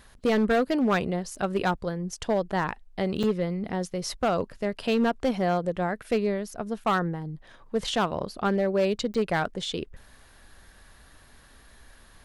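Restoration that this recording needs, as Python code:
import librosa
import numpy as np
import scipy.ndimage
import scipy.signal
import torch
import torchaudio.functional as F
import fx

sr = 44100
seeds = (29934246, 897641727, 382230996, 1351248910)

y = fx.fix_declip(x, sr, threshold_db=-18.0)
y = fx.fix_interpolate(y, sr, at_s=(1.35, 3.23, 6.84, 9.14), length_ms=5.5)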